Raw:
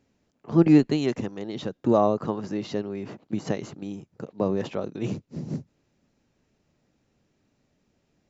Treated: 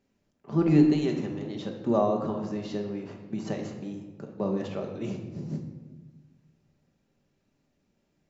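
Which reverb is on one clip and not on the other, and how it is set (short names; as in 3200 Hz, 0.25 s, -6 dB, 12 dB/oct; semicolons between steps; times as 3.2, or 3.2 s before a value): shoebox room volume 720 m³, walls mixed, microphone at 1.2 m; gain -6 dB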